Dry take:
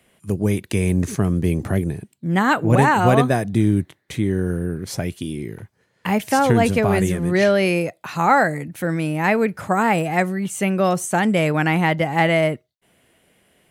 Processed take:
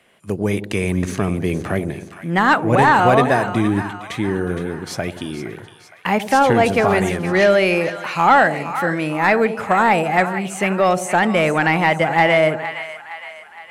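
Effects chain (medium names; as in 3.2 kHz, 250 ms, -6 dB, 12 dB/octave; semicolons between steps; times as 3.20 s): two-band feedback delay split 810 Hz, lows 88 ms, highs 464 ms, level -12 dB; overdrive pedal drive 12 dB, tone 2.7 kHz, clips at -1 dBFS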